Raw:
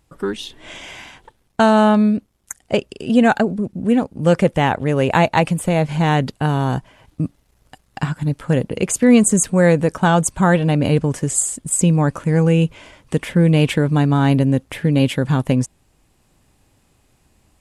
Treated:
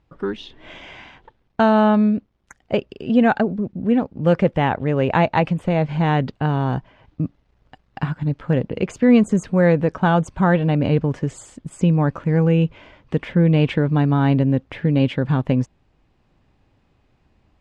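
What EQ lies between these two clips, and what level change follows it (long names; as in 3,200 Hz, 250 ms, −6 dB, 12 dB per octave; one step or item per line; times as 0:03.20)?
high-frequency loss of the air 220 metres
−1.5 dB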